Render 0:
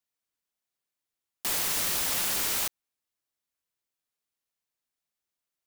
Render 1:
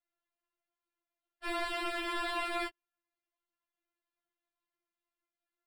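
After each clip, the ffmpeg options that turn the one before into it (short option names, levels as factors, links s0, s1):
-af "acrusher=samples=7:mix=1:aa=0.000001,aemphasis=mode=reproduction:type=75kf,afftfilt=real='re*4*eq(mod(b,16),0)':imag='im*4*eq(mod(b,16),0)':win_size=2048:overlap=0.75,volume=0.794"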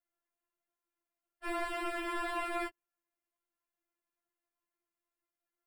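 -af "equalizer=f=125:t=o:w=1:g=-9,equalizer=f=250:t=o:w=1:g=3,equalizer=f=4000:t=o:w=1:g=-10"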